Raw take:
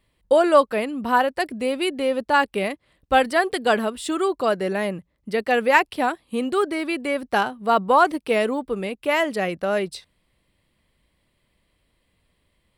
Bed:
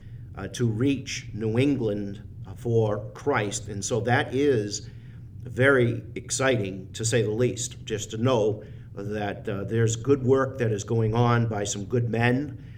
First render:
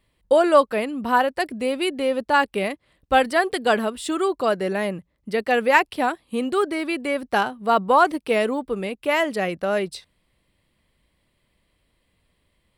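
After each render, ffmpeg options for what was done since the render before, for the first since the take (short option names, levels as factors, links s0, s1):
-af anull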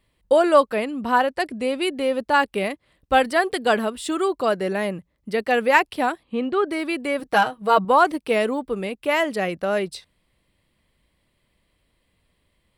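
-filter_complex "[0:a]asettb=1/sr,asplit=3[s0][s1][s2];[s0]atrim=end=0.754[s3];[s1]atrim=start=0.75:end=1.85,asetpts=PTS-STARTPTS,afade=t=in:d=0.004:c=qsin,afade=t=out:st=1.096:d=0.004:c=qsin,lowpass=11000[s4];[s2]atrim=start=1.846[s5];[s3][s4]acrossfade=d=0.004:c1=hsin:c2=qsin[s6];[s6][s5]acrossfade=d=0.004:c1=qsin:c2=hsin,asettb=1/sr,asplit=3[s7][s8][s9];[s7]atrim=end=6.234[s10];[s8]atrim=start=6.23:end=6.69,asetpts=PTS-STARTPTS,afade=t=in:d=0.004:c=qsin,afade=t=out:st=0.456:d=0.004:c=qsin,lowpass=3100[s11];[s9]atrim=start=6.686[s12];[s10][s11]acrossfade=d=0.004:c1=hsin:c2=qsin[s13];[s13][s12]acrossfade=d=0.004:c1=qsin:c2=hsin,asettb=1/sr,asplit=3[s14][s15][s16];[s14]atrim=end=7.194[s17];[s15]atrim=start=7.19:end=7.85,asetpts=PTS-STARTPTS,afade=t=in:d=0.004:c=qsin,afade=t=out:st=0.656:d=0.004:c=qsin,aecho=1:1:6.3:0.78,atrim=end_sample=29106[s18];[s16]atrim=start=7.846[s19];[s17][s18]acrossfade=d=0.004:c1=hsin:c2=qsin[s20];[s20][s19]acrossfade=d=0.004:c1=qsin:c2=hsin"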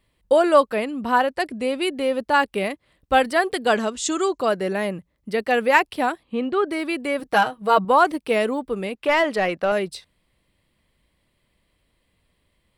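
-filter_complex "[0:a]asettb=1/sr,asplit=3[s0][s1][s2];[s0]atrim=end=3.754[s3];[s1]atrim=start=3.75:end=4.38,asetpts=PTS-STARTPTS,afade=t=in:d=0.004:c=qsin,afade=t=out:st=0.626:d=0.004:c=qsin,lowpass=f=6600:t=q:w=7.4[s4];[s2]atrim=start=4.376[s5];[s3][s4]acrossfade=d=0.004:c1=hsin:c2=qsin[s6];[s6][s5]acrossfade=d=0.004:c1=qsin:c2=hsin,asettb=1/sr,asplit=3[s7][s8][s9];[s7]atrim=end=8.954[s10];[s8]atrim=start=8.95:end=9.72,asetpts=PTS-STARTPTS,afade=t=in:d=0.004:c=qsin,afade=t=out:st=0.766:d=0.004:c=qsin,asplit=2[s11][s12];[s12]highpass=f=720:p=1,volume=4.47,asoftclip=type=tanh:threshold=0.335[s13];[s11][s13]amix=inputs=2:normalize=0,lowpass=f=2400:p=1,volume=0.501[s14];[s9]atrim=start=9.716[s15];[s10][s14]acrossfade=d=0.004:c1=hsin:c2=qsin[s16];[s16][s15]acrossfade=d=0.004:c1=qsin:c2=hsin"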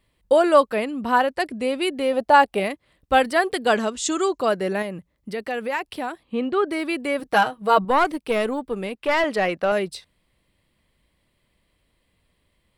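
-filter_complex "[0:a]asettb=1/sr,asplit=3[s0][s1][s2];[s0]atrim=end=2.134[s3];[s1]atrim=start=2.13:end=2.6,asetpts=PTS-STARTPTS,afade=t=in:d=0.004:c=qsin,afade=t=out:st=0.466:d=0.004:c=qsin,equalizer=f=710:t=o:w=0.44:g=14.5[s4];[s2]atrim=start=2.596[s5];[s3][s4]acrossfade=d=0.004:c1=hsin:c2=qsin[s6];[s6][s5]acrossfade=d=0.004:c1=qsin:c2=hsin,asettb=1/sr,asplit=3[s7][s8][s9];[s7]atrim=end=4.824[s10];[s8]atrim=start=4.82:end=6.22,asetpts=PTS-STARTPTS,afade=t=in:d=0.004:c=qsin,afade=t=out:st=1.396:d=0.004:c=qsin,acompressor=threshold=0.0355:ratio=2:attack=3.2:release=140:knee=1:detection=peak[s11];[s9]atrim=start=6.216[s12];[s10][s11]acrossfade=d=0.004:c1=hsin:c2=qsin[s13];[s13][s12]acrossfade=d=0.004:c1=qsin:c2=hsin,asettb=1/sr,asplit=3[s14][s15][s16];[s14]atrim=end=7.814[s17];[s15]atrim=start=7.81:end=9.24,asetpts=PTS-STARTPTS,afade=t=in:d=0.004:c=qsin,afade=t=out:st=1.426:d=0.004:c=qsin,aeval=exprs='(tanh(3.16*val(0)+0.4)-tanh(0.4))/3.16':c=same[s18];[s16]atrim=start=9.236[s19];[s17][s18]acrossfade=d=0.004:c1=hsin:c2=qsin[s20];[s20][s19]acrossfade=d=0.004:c1=qsin:c2=hsin"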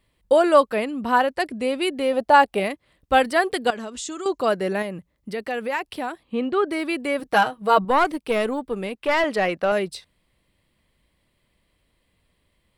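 -filter_complex "[0:a]asettb=1/sr,asplit=3[s0][s1][s2];[s0]atrim=end=3.704[s3];[s1]atrim=start=3.7:end=4.26,asetpts=PTS-STARTPTS,afade=t=in:d=0.004:c=qsin,afade=t=out:st=0.556:d=0.004:c=qsin,acompressor=threshold=0.0398:ratio=12:attack=3.2:release=140:knee=1:detection=peak[s4];[s2]atrim=start=4.256[s5];[s3][s4]acrossfade=d=0.004:c1=hsin:c2=qsin[s6];[s6][s5]acrossfade=d=0.004:c1=qsin:c2=hsin"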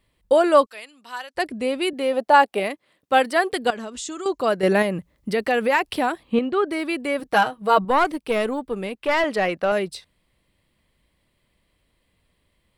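-filter_complex "[0:a]asettb=1/sr,asplit=3[s0][s1][s2];[s0]atrim=end=0.664[s3];[s1]atrim=start=0.66:end=1.35,asetpts=PTS-STARTPTS,afade=t=in:d=0.004:c=qsin,afade=t=out:st=0.686:d=0.004:c=qsin,bandpass=f=6200:t=q:w=0.84[s4];[s2]atrim=start=1.346[s5];[s3][s4]acrossfade=d=0.004:c1=hsin:c2=qsin[s6];[s6][s5]acrossfade=d=0.004:c1=qsin:c2=hsin,asettb=1/sr,asplit=3[s7][s8][s9];[s7]atrim=end=1.934[s10];[s8]atrim=start=1.93:end=3.53,asetpts=PTS-STARTPTS,afade=t=in:d=0.004:c=qsin,afade=t=out:st=1.596:d=0.004:c=qsin,highpass=220[s11];[s9]atrim=start=3.526[s12];[s10][s11]acrossfade=d=0.004:c1=hsin:c2=qsin[s13];[s13][s12]acrossfade=d=0.004:c1=qsin:c2=hsin,asettb=1/sr,asplit=3[s14][s15][s16];[s14]atrim=end=4.634[s17];[s15]atrim=start=4.63:end=6.39,asetpts=PTS-STARTPTS,afade=t=in:d=0.004:c=qsin,afade=t=out:st=1.756:d=0.004:c=qsin,acontrast=73[s18];[s16]atrim=start=6.386[s19];[s17][s18]acrossfade=d=0.004:c1=hsin:c2=qsin[s20];[s20][s19]acrossfade=d=0.004:c1=qsin:c2=hsin"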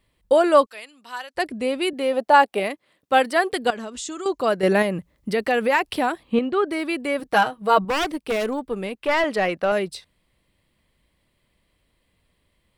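-filter_complex "[0:a]asettb=1/sr,asplit=3[s0][s1][s2];[s0]atrim=end=7.804[s3];[s1]atrim=start=7.8:end=8.67,asetpts=PTS-STARTPTS,afade=t=in:d=0.004:c=qsin,afade=t=out:st=0.866:d=0.004:c=qsin,aeval=exprs='0.141*(abs(mod(val(0)/0.141+3,4)-2)-1)':c=same[s4];[s2]atrim=start=8.666[s5];[s3][s4]acrossfade=d=0.004:c1=hsin:c2=qsin[s6];[s6][s5]acrossfade=d=0.004:c1=qsin:c2=hsin"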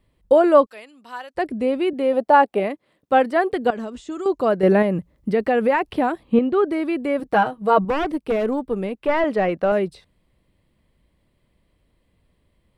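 -filter_complex "[0:a]acrossover=split=3100[s0][s1];[s1]acompressor=threshold=0.00631:ratio=4:attack=1:release=60[s2];[s0][s2]amix=inputs=2:normalize=0,tiltshelf=f=970:g=5"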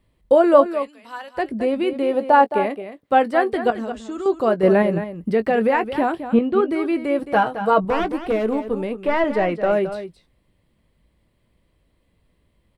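-filter_complex "[0:a]asplit=2[s0][s1];[s1]adelay=18,volume=0.251[s2];[s0][s2]amix=inputs=2:normalize=0,aecho=1:1:218:0.282"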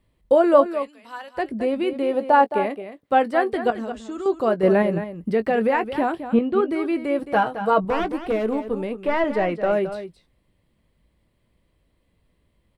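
-af "volume=0.794"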